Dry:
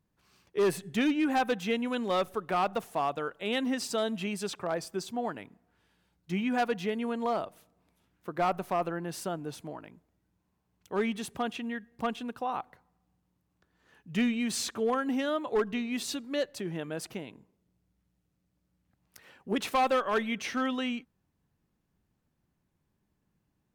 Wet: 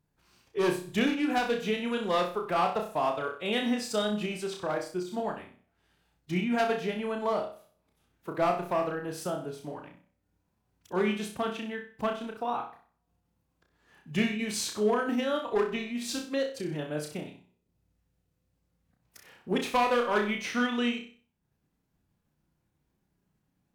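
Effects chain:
transient designer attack +1 dB, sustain −6 dB
flutter between parallel walls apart 5.4 metres, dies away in 0.42 s
phase-vocoder pitch shift with formants kept −1 semitone

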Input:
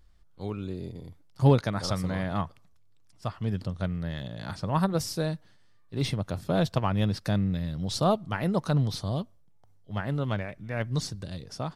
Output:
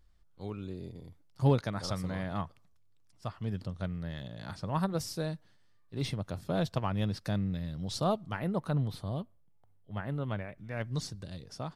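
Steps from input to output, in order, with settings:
0:08.39–0:10.58: parametric band 5,700 Hz −12.5 dB 0.91 octaves
level −5.5 dB

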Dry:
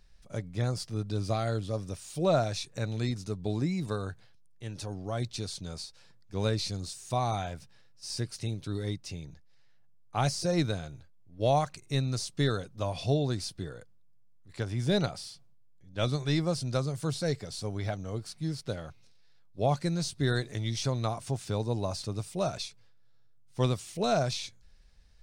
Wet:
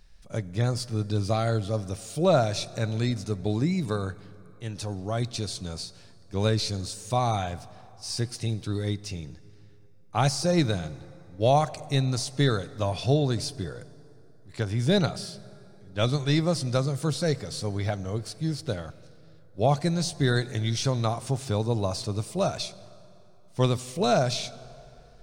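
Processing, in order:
dense smooth reverb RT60 3.2 s, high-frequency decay 0.6×, DRR 17.5 dB
level +4.5 dB

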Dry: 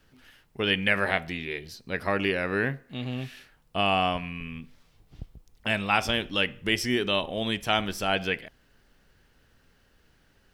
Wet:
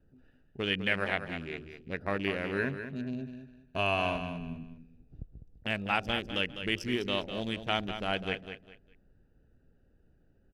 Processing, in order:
adaptive Wiener filter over 41 samples
0:02.58–0:04.54: EQ curve with evenly spaced ripples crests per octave 1.5, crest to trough 9 dB
in parallel at −2.5 dB: downward compressor, threshold −39 dBFS, peak gain reduction 19.5 dB
on the sum: repeating echo 202 ms, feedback 26%, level −9.5 dB
level −6 dB

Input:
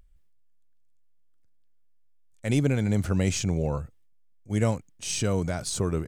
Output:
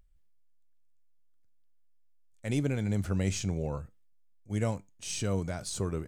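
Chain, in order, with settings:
tuned comb filter 98 Hz, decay 0.22 s, harmonics all, mix 40%
level −3 dB

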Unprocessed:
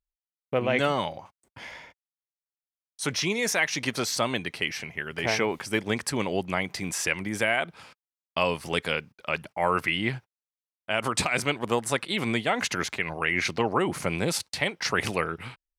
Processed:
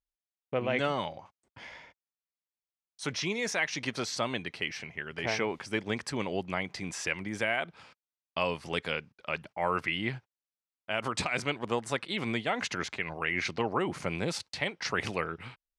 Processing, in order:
low-pass filter 6,600 Hz 12 dB per octave
level −5 dB

